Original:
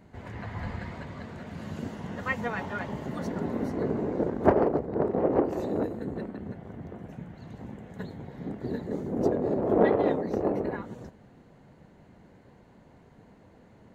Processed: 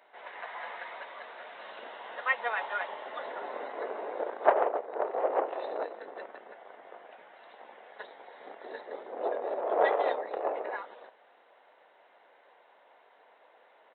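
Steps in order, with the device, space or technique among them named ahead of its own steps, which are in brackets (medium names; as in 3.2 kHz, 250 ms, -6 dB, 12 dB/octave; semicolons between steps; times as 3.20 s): musical greeting card (resampled via 8 kHz; high-pass 580 Hz 24 dB/octave; peaking EQ 3.9 kHz +8 dB 0.23 oct); trim +2.5 dB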